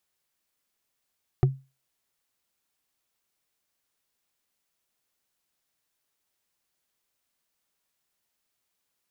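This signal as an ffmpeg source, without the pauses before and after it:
-f lavfi -i "aevalsrc='0.224*pow(10,-3*t/0.28)*sin(2*PI*134*t)+0.112*pow(10,-3*t/0.083)*sin(2*PI*369.4*t)+0.0562*pow(10,-3*t/0.037)*sin(2*PI*724.1*t)+0.0282*pow(10,-3*t/0.02)*sin(2*PI*1197*t)+0.0141*pow(10,-3*t/0.013)*sin(2*PI*1787.6*t)':d=0.45:s=44100"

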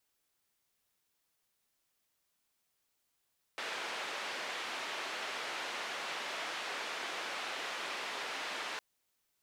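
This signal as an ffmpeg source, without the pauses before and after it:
-f lavfi -i "anoisesrc=c=white:d=5.21:r=44100:seed=1,highpass=f=430,lowpass=f=2800,volume=-25.9dB"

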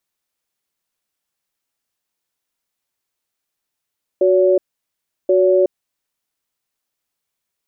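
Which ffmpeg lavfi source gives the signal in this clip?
-f lavfi -i "aevalsrc='0.224*(sin(2*PI*369*t)+sin(2*PI*567*t))*clip(min(mod(t,1.08),0.37-mod(t,1.08))/0.005,0,1)':d=1.73:s=44100"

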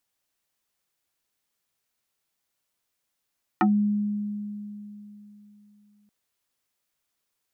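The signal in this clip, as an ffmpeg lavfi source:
-f lavfi -i "aevalsrc='0.158*pow(10,-3*t/3.38)*sin(2*PI*207*t+3.3*pow(10,-3*t/0.14)*sin(2*PI*2.6*207*t))':d=2.48:s=44100"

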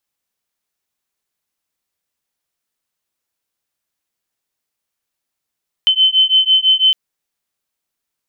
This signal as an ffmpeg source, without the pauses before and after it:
-f lavfi -i "aevalsrc='0.237*(sin(2*PI*3060*t)+sin(2*PI*3066*t))':d=1.06:s=44100"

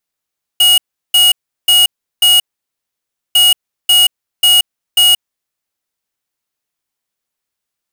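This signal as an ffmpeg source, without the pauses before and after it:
-f lavfi -i "aevalsrc='0.398*(2*lt(mod(2890*t,1),0.5)-1)*clip(min(mod(mod(t,2.75),0.54),0.18-mod(mod(t,2.75),0.54))/0.005,0,1)*lt(mod(t,2.75),2.16)':d=5.5:s=44100"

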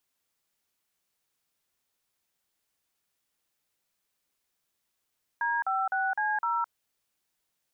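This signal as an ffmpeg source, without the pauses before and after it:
-f lavfi -i "aevalsrc='0.0398*clip(min(mod(t,0.255),0.213-mod(t,0.255))/0.002,0,1)*(eq(floor(t/0.255),0)*(sin(2*PI*941*mod(t,0.255))+sin(2*PI*1633*mod(t,0.255)))+eq(floor(t/0.255),1)*(sin(2*PI*770*mod(t,0.255))+sin(2*PI*1336*mod(t,0.255)))+eq(floor(t/0.255),2)*(sin(2*PI*770*mod(t,0.255))+sin(2*PI*1477*mod(t,0.255)))+eq(floor(t/0.255),3)*(sin(2*PI*852*mod(t,0.255))+sin(2*PI*1633*mod(t,0.255)))+eq(floor(t/0.255),4)*(sin(2*PI*941*mod(t,0.255))+sin(2*PI*1336*mod(t,0.255))))':d=1.275:s=44100"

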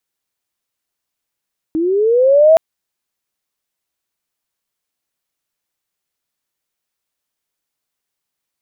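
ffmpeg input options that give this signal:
-f lavfi -i "aevalsrc='pow(10,(-14+10*t/0.82)/20)*sin(2*PI*(310*t+350*t*t/(2*0.82)))':d=0.82:s=44100"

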